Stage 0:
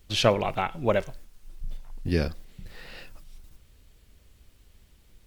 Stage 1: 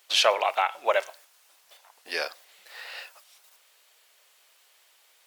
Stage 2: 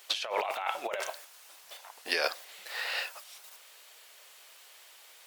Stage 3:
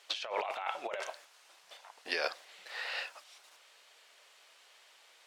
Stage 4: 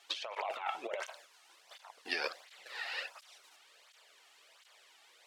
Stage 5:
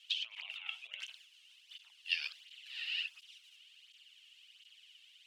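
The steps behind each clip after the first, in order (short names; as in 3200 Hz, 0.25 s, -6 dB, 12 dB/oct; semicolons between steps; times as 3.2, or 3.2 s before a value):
HPF 640 Hz 24 dB/oct; in parallel at 0 dB: limiter -18 dBFS, peak gain reduction 8.5 dB
negative-ratio compressor -32 dBFS, ratio -1
air absorption 59 m; gain -3.5 dB
tape flanging out of phase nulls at 1.4 Hz, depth 2.1 ms; gain +1.5 dB
resonant high-pass 2900 Hz, resonance Q 6.8; gain -7 dB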